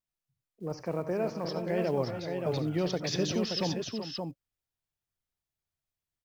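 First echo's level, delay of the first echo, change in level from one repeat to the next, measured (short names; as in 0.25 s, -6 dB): -15.0 dB, 71 ms, no steady repeat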